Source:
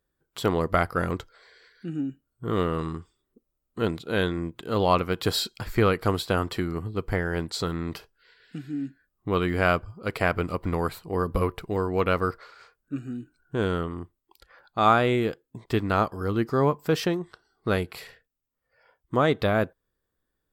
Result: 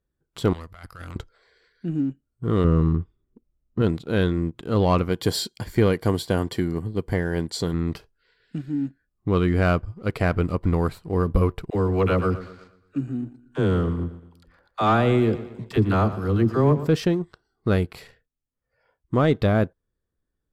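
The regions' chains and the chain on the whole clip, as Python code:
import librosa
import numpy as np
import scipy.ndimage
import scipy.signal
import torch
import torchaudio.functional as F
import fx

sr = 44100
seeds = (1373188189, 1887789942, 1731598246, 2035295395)

y = fx.chain(x, sr, fx.tone_stack(knobs='10-0-10'),
    fx.over_compress(threshold_db=-38.0, ratio=-1.0),
    fx.transformer_sat(knee_hz=1000.0), at=(0.53, 1.16))
y = fx.chain(y, sr, fx.lowpass(hz=2600.0, slope=12),
    fx.low_shelf(hz=260.0, db=8.0), at=(2.64, 3.82))
y = fx.chain(y, sr, fx.high_shelf(hz=5300.0, db=8.0),
    fx.notch_comb(f0_hz=1300.0), at=(5.09, 7.74))
y = fx.chain(y, sr, fx.dispersion(late='lows', ms=54.0, hz=440.0),
    fx.echo_feedback(ms=117, feedback_pct=51, wet_db=-14.5), at=(11.7, 16.88))
y = fx.leveller(y, sr, passes=1)
y = scipy.signal.sosfilt(scipy.signal.butter(2, 12000.0, 'lowpass', fs=sr, output='sos'), y)
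y = fx.low_shelf(y, sr, hz=370.0, db=10.5)
y = F.gain(torch.from_numpy(y), -5.5).numpy()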